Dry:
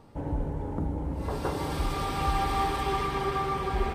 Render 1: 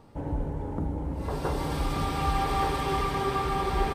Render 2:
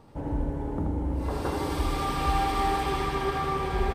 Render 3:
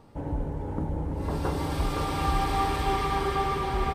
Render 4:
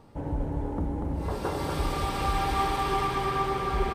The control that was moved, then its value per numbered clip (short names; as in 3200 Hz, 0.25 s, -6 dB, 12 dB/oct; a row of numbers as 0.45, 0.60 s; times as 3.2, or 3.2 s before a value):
feedback echo, time: 1178, 80, 516, 240 ms